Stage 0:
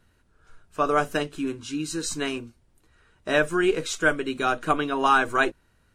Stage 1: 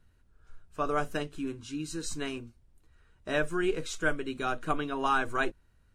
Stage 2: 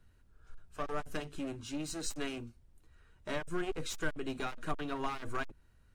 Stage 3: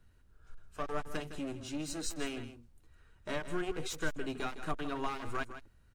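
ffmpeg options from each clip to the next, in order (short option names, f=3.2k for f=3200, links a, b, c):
-af "lowshelf=f=110:g=11.5,volume=-8dB"
-filter_complex "[0:a]acrossover=split=240[a][b];[b]acompressor=threshold=-33dB:ratio=6[c];[a][c]amix=inputs=2:normalize=0,aeval=exprs='clip(val(0),-1,0.00944)':c=same"
-af "aecho=1:1:160:0.266"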